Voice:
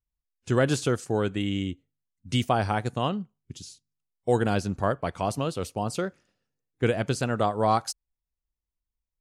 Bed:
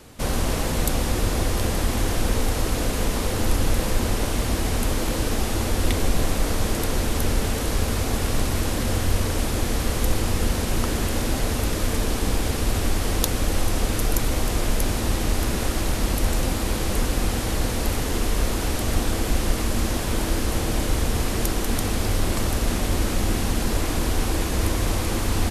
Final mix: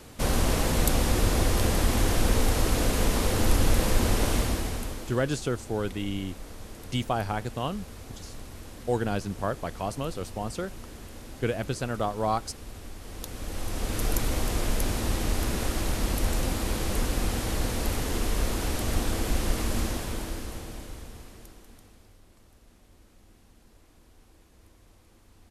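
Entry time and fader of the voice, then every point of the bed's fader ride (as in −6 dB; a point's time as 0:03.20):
4.60 s, −4.0 dB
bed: 0:04.36 −1 dB
0:05.30 −19.5 dB
0:12.99 −19.5 dB
0:14.06 −4.5 dB
0:19.79 −4.5 dB
0:22.22 −34.5 dB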